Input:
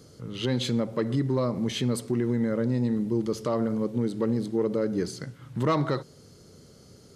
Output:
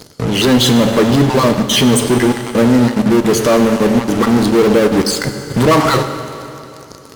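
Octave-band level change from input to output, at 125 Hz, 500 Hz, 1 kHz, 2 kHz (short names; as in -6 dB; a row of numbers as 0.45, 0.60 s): +12.0, +15.5, +18.5, +21.0 dB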